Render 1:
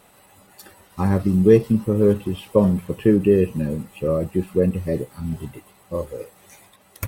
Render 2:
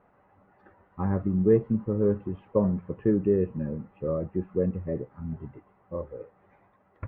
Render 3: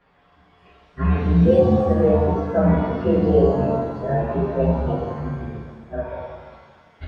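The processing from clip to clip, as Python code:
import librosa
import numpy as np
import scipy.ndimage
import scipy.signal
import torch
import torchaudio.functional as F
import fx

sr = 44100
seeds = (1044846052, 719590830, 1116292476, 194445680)

y1 = scipy.signal.sosfilt(scipy.signal.butter(4, 1700.0, 'lowpass', fs=sr, output='sos'), x)
y1 = y1 * 10.0 ** (-7.5 / 20.0)
y2 = fx.partial_stretch(y1, sr, pct=125)
y2 = fx.rev_shimmer(y2, sr, seeds[0], rt60_s=1.5, semitones=7, shimmer_db=-8, drr_db=-2.0)
y2 = y2 * 10.0 ** (5.5 / 20.0)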